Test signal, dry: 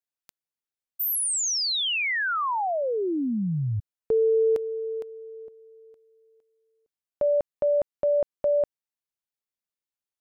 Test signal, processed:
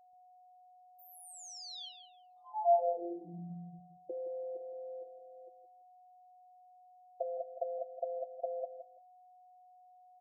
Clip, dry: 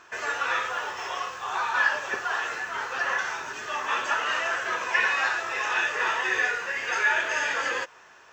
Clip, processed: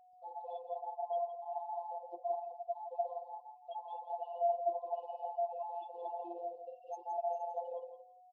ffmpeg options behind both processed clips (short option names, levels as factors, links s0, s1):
-filter_complex "[0:a]bandreject=f=60:t=h:w=6,bandreject=f=120:t=h:w=6,bandreject=f=180:t=h:w=6,bandreject=f=240:t=h:w=6,bandreject=f=300:t=h:w=6,bandreject=f=360:t=h:w=6,bandreject=f=420:t=h:w=6,bandreject=f=480:t=h:w=6,bandreject=f=540:t=h:w=6,bandreject=f=600:t=h:w=6,afftfilt=real='re*gte(hypot(re,im),0.0794)':imag='im*gte(hypot(re,im),0.0794)':win_size=1024:overlap=0.75,acrossover=split=430|1300[s0][s1][s2];[s0]acompressor=threshold=0.02:ratio=6[s3];[s1]acompressor=threshold=0.0631:ratio=4[s4];[s2]acompressor=threshold=0.00398:ratio=1.5[s5];[s3][s4][s5]amix=inputs=3:normalize=0,equalizer=f=250:t=o:w=0.67:g=8,equalizer=f=630:t=o:w=0.67:g=3,equalizer=f=2500:t=o:w=0.67:g=-4,afftfilt=real='hypot(re,im)*cos(PI*b)':imag='0':win_size=1024:overlap=0.75,acompressor=threshold=0.00708:ratio=2:attack=6.9:release=82:knee=1:detection=peak,asplit=3[s6][s7][s8];[s6]bandpass=f=730:t=q:w=8,volume=1[s9];[s7]bandpass=f=1090:t=q:w=8,volume=0.501[s10];[s8]bandpass=f=2440:t=q:w=8,volume=0.355[s11];[s9][s10][s11]amix=inputs=3:normalize=0,aeval=exprs='val(0)+0.0002*sin(2*PI*730*n/s)':c=same,asuperstop=centerf=1700:order=20:qfactor=0.77,bass=f=250:g=10,treble=f=4000:g=7,asplit=2[s12][s13];[s13]aecho=0:1:167|334:0.316|0.0538[s14];[s12][s14]amix=inputs=2:normalize=0,volume=4.73"